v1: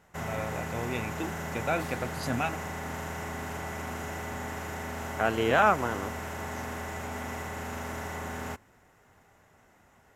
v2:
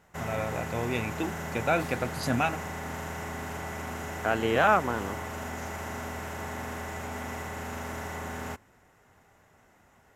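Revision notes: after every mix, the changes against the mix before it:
first voice +3.5 dB; second voice: entry -0.95 s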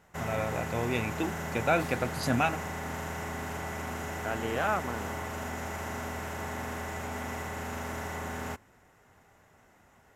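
second voice -7.5 dB

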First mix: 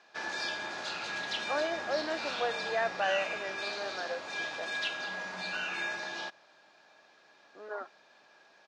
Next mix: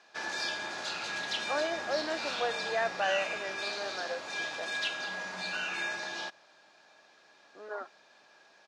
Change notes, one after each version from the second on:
master: add high shelf 8400 Hz +11 dB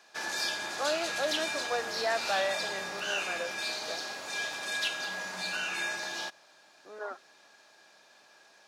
speech: entry -0.70 s; master: remove air absorption 84 m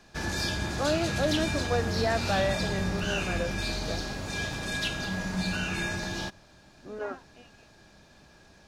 second voice: unmuted; master: remove HPF 610 Hz 12 dB/oct

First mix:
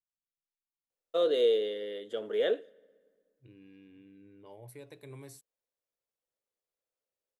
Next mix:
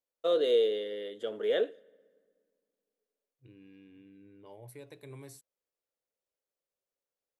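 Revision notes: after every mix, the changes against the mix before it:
first voice: entry -0.90 s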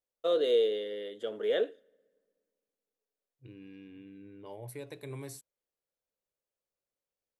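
first voice: send -6.5 dB; second voice +5.5 dB

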